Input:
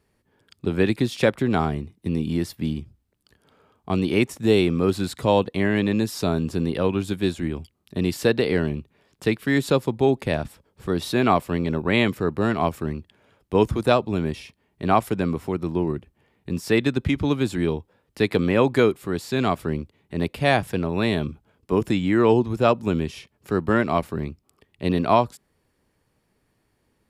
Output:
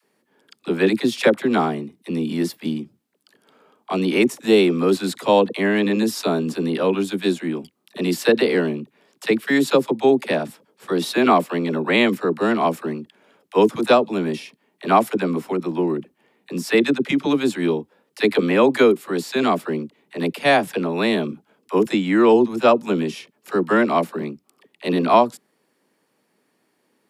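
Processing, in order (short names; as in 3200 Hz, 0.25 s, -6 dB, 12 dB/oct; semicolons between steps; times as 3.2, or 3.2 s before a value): HPF 200 Hz 24 dB/oct; dispersion lows, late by 42 ms, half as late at 510 Hz; gain +4 dB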